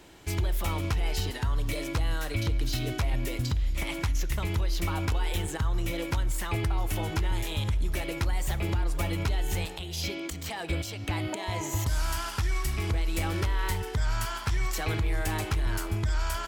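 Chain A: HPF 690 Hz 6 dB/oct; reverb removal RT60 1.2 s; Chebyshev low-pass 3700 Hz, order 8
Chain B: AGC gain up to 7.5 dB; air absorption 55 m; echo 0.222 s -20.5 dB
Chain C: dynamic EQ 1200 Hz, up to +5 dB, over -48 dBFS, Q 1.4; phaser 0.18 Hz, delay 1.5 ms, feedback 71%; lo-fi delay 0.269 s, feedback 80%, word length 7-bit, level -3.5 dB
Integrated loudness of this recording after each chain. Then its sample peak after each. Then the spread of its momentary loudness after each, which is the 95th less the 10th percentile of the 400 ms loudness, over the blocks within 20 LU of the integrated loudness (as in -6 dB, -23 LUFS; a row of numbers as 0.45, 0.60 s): -40.5, -23.5, -21.5 LUFS; -22.5, -12.0, -4.5 dBFS; 4, 3, 5 LU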